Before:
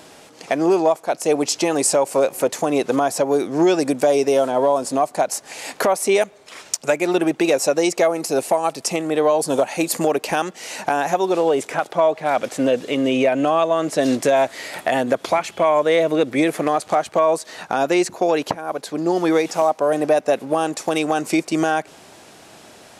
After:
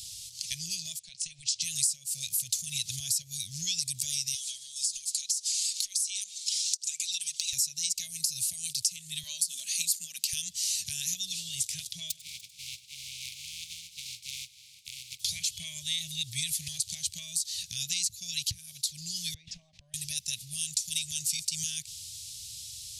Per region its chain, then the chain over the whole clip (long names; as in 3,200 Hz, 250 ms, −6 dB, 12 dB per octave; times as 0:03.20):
0:00.99–0:01.62: bass and treble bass −8 dB, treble −12 dB + downward compressor 10 to 1, threshold −21 dBFS + linear-phase brick-wall low-pass 10,000 Hz
0:04.34–0:07.53: meter weighting curve ITU-R 468 + downward compressor 8 to 1, threshold −30 dBFS + comb filter 4.8 ms
0:09.23–0:10.33: Butterworth high-pass 170 Hz 96 dB per octave + parametric band 1,300 Hz +12.5 dB 0.65 octaves
0:12.10–0:15.19: compressing power law on the bin magnitudes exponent 0.2 + formant filter u + echo machine with several playback heads 98 ms, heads first and third, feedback 47%, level −20 dB
0:19.34–0:19.94: Chebyshev band-pass filter 180–900 Hz + low-shelf EQ 300 Hz −11.5 dB + background raised ahead of every attack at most 71 dB per second
whole clip: inverse Chebyshev band-stop filter 280–1,400 Hz, stop band 60 dB; low-shelf EQ 150 Hz −3 dB; downward compressor 6 to 1, threshold −35 dBFS; level +8.5 dB